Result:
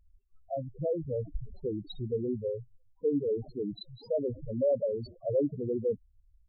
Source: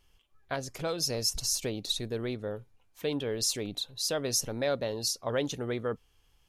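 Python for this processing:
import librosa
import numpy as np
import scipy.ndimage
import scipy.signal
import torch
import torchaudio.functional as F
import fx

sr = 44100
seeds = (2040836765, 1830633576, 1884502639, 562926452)

y = scipy.ndimage.median_filter(x, 25, mode='constant')
y = fx.spec_topn(y, sr, count=4)
y = F.gain(torch.from_numpy(y), 5.0).numpy()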